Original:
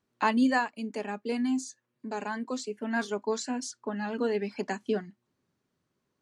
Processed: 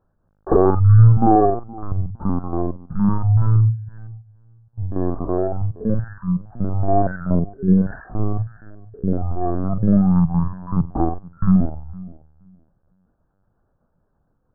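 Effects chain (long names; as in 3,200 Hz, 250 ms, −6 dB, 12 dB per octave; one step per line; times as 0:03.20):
on a send: tape delay 204 ms, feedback 20%, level −19.5 dB, low-pass 1,600 Hz
on the sum: linear-prediction vocoder at 8 kHz pitch kept
wrong playback speed 78 rpm record played at 33 rpm
boost into a limiter +14.5 dB
level −1 dB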